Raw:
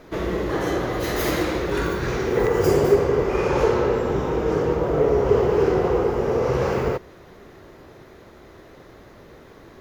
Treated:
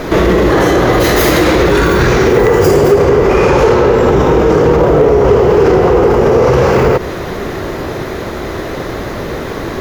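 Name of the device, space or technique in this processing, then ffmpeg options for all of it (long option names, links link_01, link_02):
loud club master: -af "acompressor=threshold=-23dB:ratio=2.5,asoftclip=type=hard:threshold=-17.5dB,alimiter=level_in=26.5dB:limit=-1dB:release=50:level=0:latency=1,volume=-1dB"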